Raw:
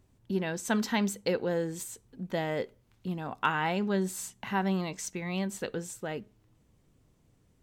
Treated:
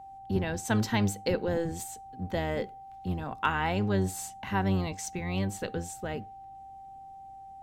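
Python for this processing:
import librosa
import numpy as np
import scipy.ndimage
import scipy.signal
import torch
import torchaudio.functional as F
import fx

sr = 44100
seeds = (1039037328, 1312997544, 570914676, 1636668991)

y = fx.octave_divider(x, sr, octaves=1, level_db=-1.0)
y = y + 10.0 ** (-44.0 / 20.0) * np.sin(2.0 * np.pi * 780.0 * np.arange(len(y)) / sr)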